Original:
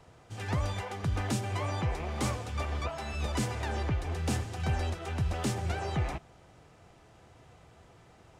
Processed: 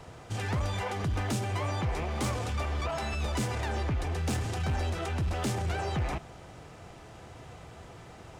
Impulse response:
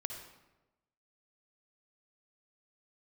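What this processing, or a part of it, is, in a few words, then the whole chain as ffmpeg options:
clipper into limiter: -af "asoftclip=type=hard:threshold=-27dB,alimiter=level_in=10.5dB:limit=-24dB:level=0:latency=1:release=20,volume=-10.5dB,volume=9dB"

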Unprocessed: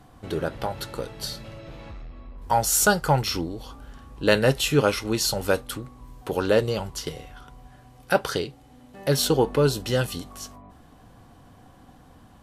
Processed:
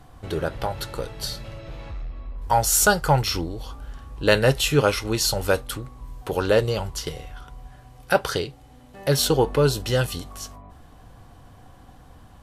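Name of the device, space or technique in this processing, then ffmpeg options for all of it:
low shelf boost with a cut just above: -af "lowshelf=f=87:g=7,equalizer=f=230:t=o:w=1.1:g=-5,volume=2dB"

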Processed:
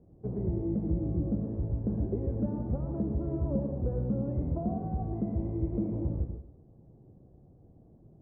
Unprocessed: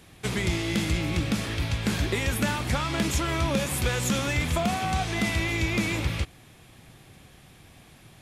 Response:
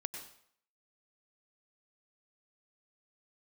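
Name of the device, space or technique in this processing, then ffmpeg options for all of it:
next room: -filter_complex "[0:a]lowpass=f=580:w=0.5412,lowpass=f=580:w=1.3066[a];[1:a]atrim=start_sample=2205[b];[a][b]afir=irnorm=-1:irlink=0,volume=-2dB"

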